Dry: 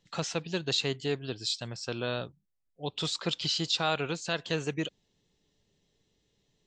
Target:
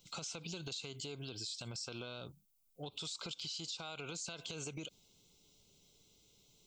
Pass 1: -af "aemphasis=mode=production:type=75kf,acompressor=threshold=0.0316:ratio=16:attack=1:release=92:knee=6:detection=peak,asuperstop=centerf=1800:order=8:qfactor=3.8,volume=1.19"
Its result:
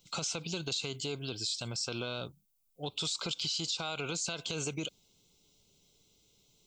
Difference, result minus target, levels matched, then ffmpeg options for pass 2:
compression: peak gain reduction -9 dB
-af "aemphasis=mode=production:type=75kf,acompressor=threshold=0.0106:ratio=16:attack=1:release=92:knee=6:detection=peak,asuperstop=centerf=1800:order=8:qfactor=3.8,volume=1.19"

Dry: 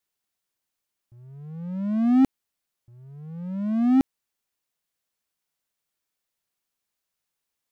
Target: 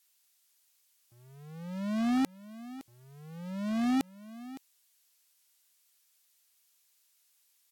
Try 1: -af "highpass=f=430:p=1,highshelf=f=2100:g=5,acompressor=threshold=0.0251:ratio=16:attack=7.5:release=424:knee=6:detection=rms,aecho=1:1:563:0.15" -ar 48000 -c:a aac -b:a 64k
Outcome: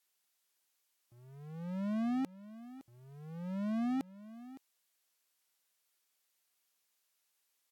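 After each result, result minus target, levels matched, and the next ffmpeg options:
4 kHz band -8.5 dB; compression: peak gain reduction +6.5 dB
-af "highpass=f=430:p=1,highshelf=f=2100:g=15,acompressor=threshold=0.0251:ratio=16:attack=7.5:release=424:knee=6:detection=rms,aecho=1:1:563:0.15" -ar 48000 -c:a aac -b:a 64k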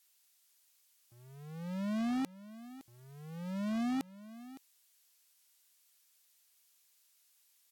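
compression: peak gain reduction +7 dB
-af "highpass=f=430:p=1,highshelf=f=2100:g=15,acompressor=threshold=0.0596:ratio=16:attack=7.5:release=424:knee=6:detection=rms,aecho=1:1:563:0.15" -ar 48000 -c:a aac -b:a 64k

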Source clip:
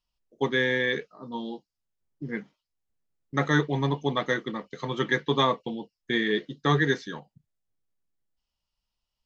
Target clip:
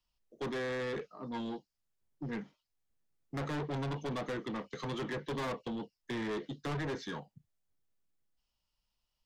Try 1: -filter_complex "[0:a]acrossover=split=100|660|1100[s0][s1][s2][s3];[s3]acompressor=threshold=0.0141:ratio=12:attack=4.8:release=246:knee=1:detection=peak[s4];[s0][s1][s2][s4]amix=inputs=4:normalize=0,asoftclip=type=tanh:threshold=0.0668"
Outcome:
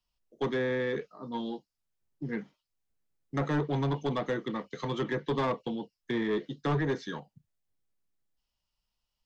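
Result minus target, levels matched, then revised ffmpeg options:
saturation: distortion -7 dB
-filter_complex "[0:a]acrossover=split=100|660|1100[s0][s1][s2][s3];[s3]acompressor=threshold=0.0141:ratio=12:attack=4.8:release=246:knee=1:detection=peak[s4];[s0][s1][s2][s4]amix=inputs=4:normalize=0,asoftclip=type=tanh:threshold=0.02"

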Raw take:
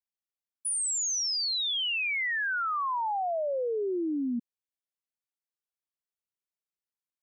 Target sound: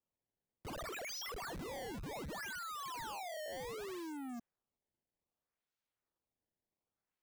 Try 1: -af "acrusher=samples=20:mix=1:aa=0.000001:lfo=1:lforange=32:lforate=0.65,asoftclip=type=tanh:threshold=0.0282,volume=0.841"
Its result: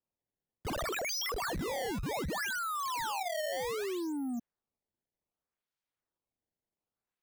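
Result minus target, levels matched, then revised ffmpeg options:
saturation: distortion -8 dB
-af "acrusher=samples=20:mix=1:aa=0.000001:lfo=1:lforange=32:lforate=0.65,asoftclip=type=tanh:threshold=0.00794,volume=0.841"

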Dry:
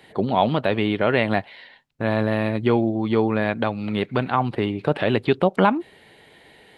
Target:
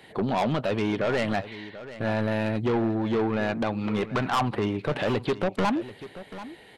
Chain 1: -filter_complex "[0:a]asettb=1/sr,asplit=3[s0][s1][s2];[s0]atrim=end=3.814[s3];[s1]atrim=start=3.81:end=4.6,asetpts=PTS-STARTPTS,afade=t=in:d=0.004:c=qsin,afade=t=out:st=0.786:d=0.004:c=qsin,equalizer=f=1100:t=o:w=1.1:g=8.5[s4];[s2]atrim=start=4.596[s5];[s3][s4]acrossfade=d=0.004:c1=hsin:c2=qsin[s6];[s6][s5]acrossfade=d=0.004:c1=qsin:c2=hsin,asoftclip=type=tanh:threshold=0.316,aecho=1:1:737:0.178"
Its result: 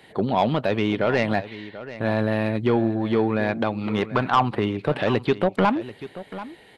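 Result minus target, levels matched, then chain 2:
saturation: distortion -8 dB
-filter_complex "[0:a]asettb=1/sr,asplit=3[s0][s1][s2];[s0]atrim=end=3.814[s3];[s1]atrim=start=3.81:end=4.6,asetpts=PTS-STARTPTS,afade=t=in:d=0.004:c=qsin,afade=t=out:st=0.786:d=0.004:c=qsin,equalizer=f=1100:t=o:w=1.1:g=8.5[s4];[s2]atrim=start=4.596[s5];[s3][s4]acrossfade=d=0.004:c1=hsin:c2=qsin[s6];[s6][s5]acrossfade=d=0.004:c1=qsin:c2=hsin,asoftclip=type=tanh:threshold=0.1,aecho=1:1:737:0.178"

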